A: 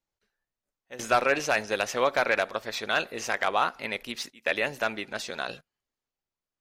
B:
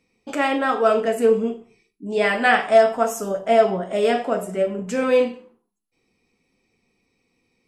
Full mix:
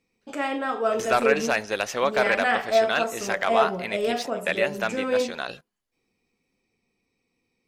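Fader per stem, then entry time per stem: +1.0, −6.5 decibels; 0.00, 0.00 seconds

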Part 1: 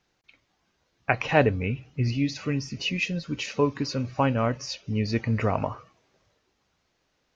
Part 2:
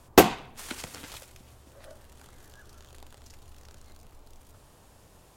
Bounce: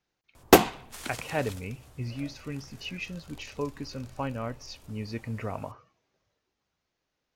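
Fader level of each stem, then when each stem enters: −9.5, −0.5 decibels; 0.00, 0.35 seconds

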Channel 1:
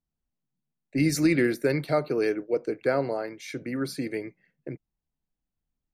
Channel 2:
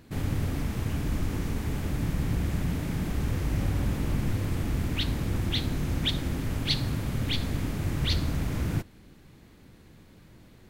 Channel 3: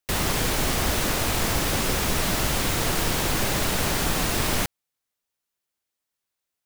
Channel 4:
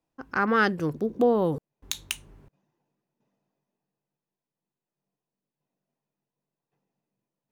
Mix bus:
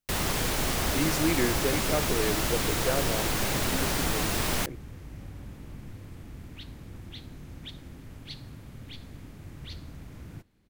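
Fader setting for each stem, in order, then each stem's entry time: −5.0 dB, −15.0 dB, −4.0 dB, muted; 0.00 s, 1.60 s, 0.00 s, muted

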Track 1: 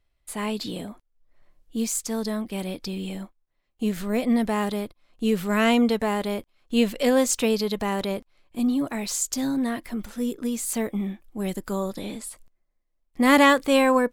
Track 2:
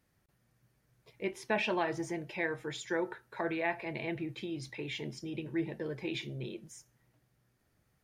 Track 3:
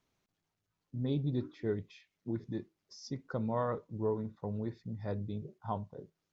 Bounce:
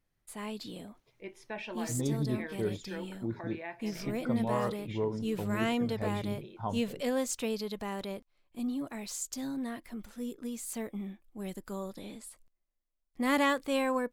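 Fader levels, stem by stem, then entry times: −11.0, −9.0, +1.0 decibels; 0.00, 0.00, 0.95 seconds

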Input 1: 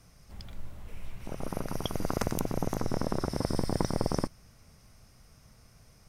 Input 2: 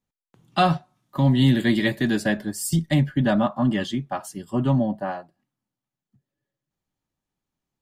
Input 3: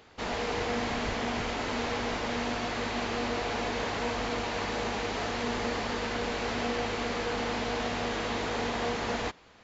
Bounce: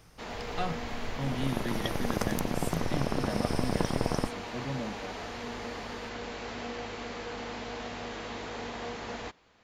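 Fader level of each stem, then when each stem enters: −0.5, −15.5, −7.0 decibels; 0.00, 0.00, 0.00 seconds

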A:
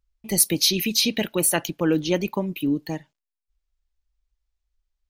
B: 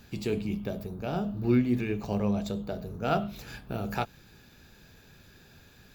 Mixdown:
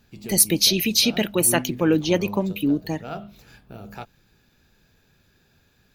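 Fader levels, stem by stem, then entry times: +2.0, −6.5 decibels; 0.00, 0.00 seconds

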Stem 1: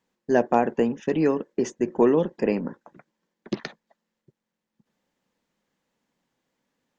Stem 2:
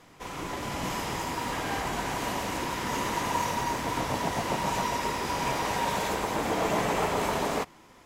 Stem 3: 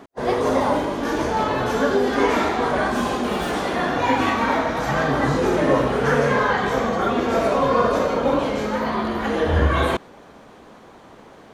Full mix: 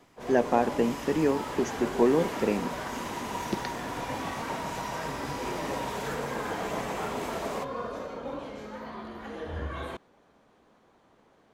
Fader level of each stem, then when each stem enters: −3.5, −7.0, −17.0 decibels; 0.00, 0.00, 0.00 seconds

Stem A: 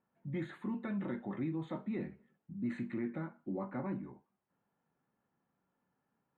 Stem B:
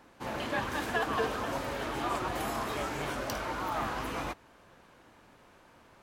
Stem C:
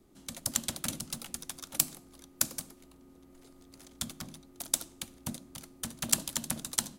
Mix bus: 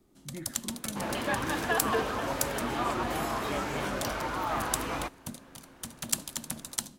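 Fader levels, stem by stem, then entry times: −3.5, +2.0, −2.5 decibels; 0.00, 0.75, 0.00 seconds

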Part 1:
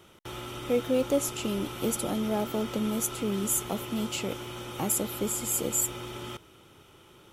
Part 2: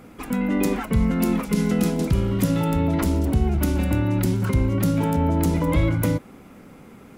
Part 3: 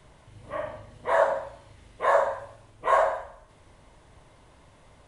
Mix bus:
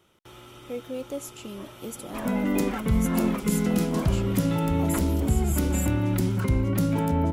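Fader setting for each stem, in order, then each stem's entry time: −8.0, −3.0, −17.0 decibels; 0.00, 1.95, 1.05 seconds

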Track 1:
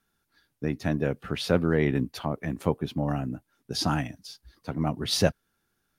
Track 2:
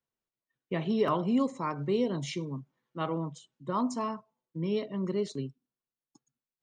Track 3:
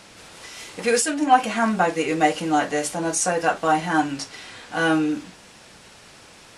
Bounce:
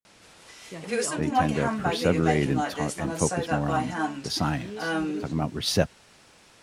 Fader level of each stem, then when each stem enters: 0.0, −8.0, −8.0 decibels; 0.55, 0.00, 0.05 seconds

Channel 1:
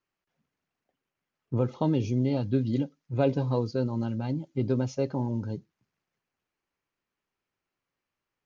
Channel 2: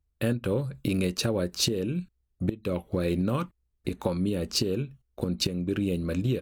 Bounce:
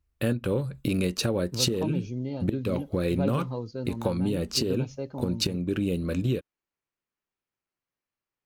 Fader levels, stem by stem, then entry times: −6.5, +0.5 decibels; 0.00, 0.00 seconds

